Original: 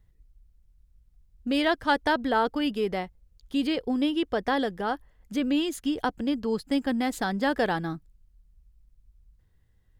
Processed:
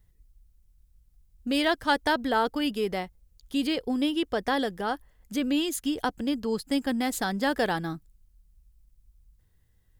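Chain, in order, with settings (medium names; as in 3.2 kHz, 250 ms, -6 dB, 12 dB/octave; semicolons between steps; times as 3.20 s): treble shelf 5.6 kHz +10.5 dB; trim -1 dB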